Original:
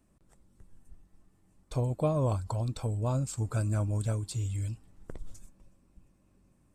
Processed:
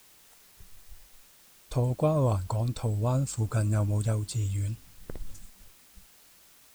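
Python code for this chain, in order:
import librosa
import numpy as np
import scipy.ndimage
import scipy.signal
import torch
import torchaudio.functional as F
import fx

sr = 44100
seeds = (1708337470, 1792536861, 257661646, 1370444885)

y = fx.noise_reduce_blind(x, sr, reduce_db=14)
y = fx.quant_dither(y, sr, seeds[0], bits=10, dither='triangular')
y = y * librosa.db_to_amplitude(3.0)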